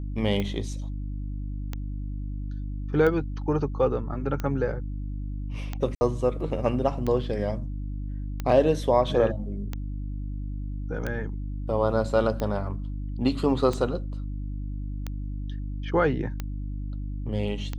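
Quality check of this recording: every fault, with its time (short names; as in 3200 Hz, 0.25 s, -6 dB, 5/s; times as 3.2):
hum 50 Hz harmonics 6 -32 dBFS
tick 45 rpm -17 dBFS
5.95–6.01 gap 60 ms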